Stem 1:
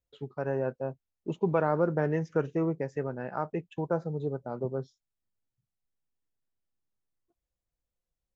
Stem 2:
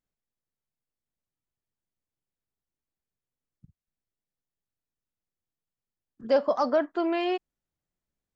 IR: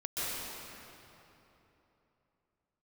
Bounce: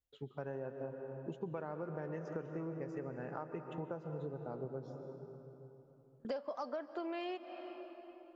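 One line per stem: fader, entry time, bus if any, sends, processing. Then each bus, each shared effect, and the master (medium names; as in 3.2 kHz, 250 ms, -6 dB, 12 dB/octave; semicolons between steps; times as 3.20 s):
-7.0 dB, 0.00 s, send -12.5 dB, none
-1.0 dB, 0.00 s, send -22.5 dB, high-pass 260 Hz; gate with hold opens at -40 dBFS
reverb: on, RT60 3.3 s, pre-delay 119 ms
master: compression 8:1, threshold -38 dBFS, peak gain reduction 19 dB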